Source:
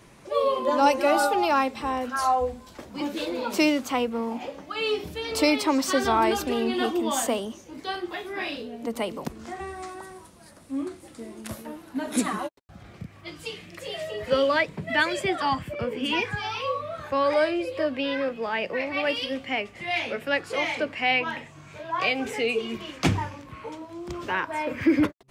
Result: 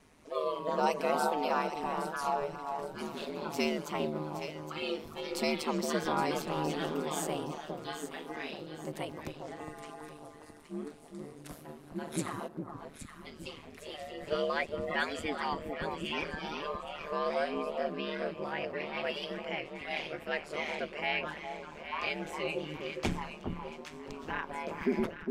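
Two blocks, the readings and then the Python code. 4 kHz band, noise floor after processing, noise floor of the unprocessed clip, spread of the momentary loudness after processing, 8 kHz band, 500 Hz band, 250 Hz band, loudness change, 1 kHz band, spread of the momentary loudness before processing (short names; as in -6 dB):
-9.5 dB, -52 dBFS, -50 dBFS, 14 LU, -9.5 dB, -8.0 dB, -10.0 dB, -9.5 dB, -8.5 dB, 16 LU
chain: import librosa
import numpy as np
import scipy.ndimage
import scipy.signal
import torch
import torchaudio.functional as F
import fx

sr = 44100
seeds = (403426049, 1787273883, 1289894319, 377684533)

y = fx.echo_alternate(x, sr, ms=409, hz=1200.0, feedback_pct=59, wet_db=-5.0)
y = y * np.sin(2.0 * np.pi * 76.0 * np.arange(len(y)) / sr)
y = y * 10.0 ** (-7.0 / 20.0)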